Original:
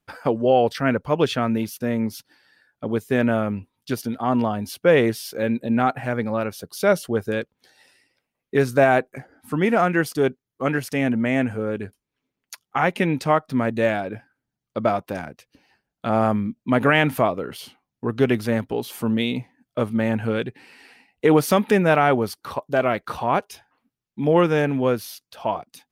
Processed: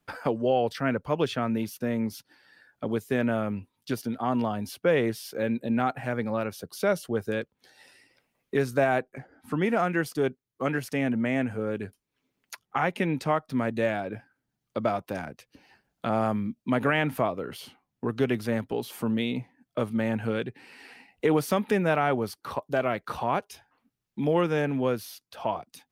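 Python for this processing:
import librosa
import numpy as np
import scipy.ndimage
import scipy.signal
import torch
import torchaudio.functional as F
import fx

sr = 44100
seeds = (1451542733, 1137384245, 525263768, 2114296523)

y = fx.lowpass(x, sr, hz=3900.0, slope=6, at=(9.03, 9.62))
y = fx.band_squash(y, sr, depth_pct=40)
y = F.gain(torch.from_numpy(y), -6.0).numpy()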